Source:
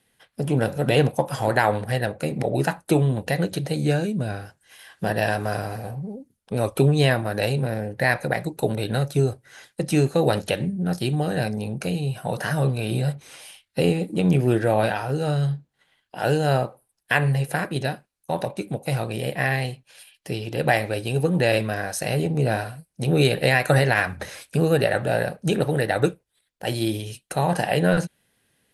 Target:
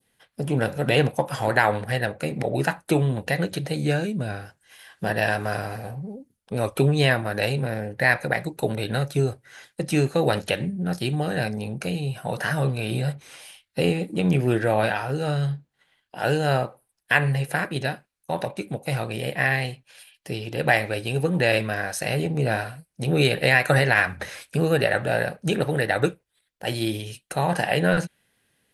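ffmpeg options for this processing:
-af "adynamicequalizer=threshold=0.0141:dfrequency=2000:dqfactor=0.77:tfrequency=2000:tqfactor=0.77:attack=5:release=100:ratio=0.375:range=2.5:mode=boostabove:tftype=bell,volume=-2dB"

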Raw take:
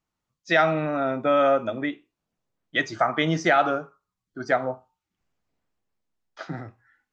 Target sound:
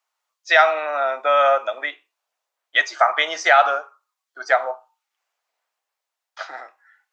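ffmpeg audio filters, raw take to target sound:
-af "highpass=f=640:w=0.5412,highpass=f=640:w=1.3066,volume=7dB"

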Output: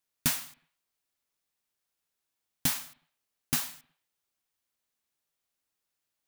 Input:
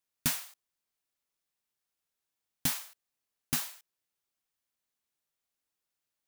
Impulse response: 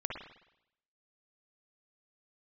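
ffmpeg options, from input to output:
-filter_complex "[0:a]asplit=2[a][b];[1:a]atrim=start_sample=2205,afade=t=out:st=0.43:d=0.01,atrim=end_sample=19404[c];[b][c]afir=irnorm=-1:irlink=0,volume=-19.5dB[d];[a][d]amix=inputs=2:normalize=0,volume=1.5dB"

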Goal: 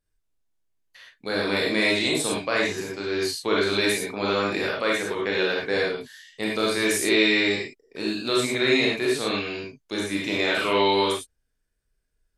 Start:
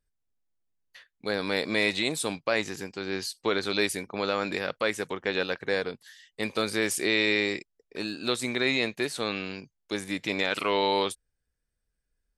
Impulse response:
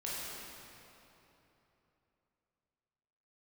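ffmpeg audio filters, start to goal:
-filter_complex "[1:a]atrim=start_sample=2205,atrim=end_sample=3528,asetrate=29547,aresample=44100[a];[0:a][a]afir=irnorm=-1:irlink=0,volume=3dB"

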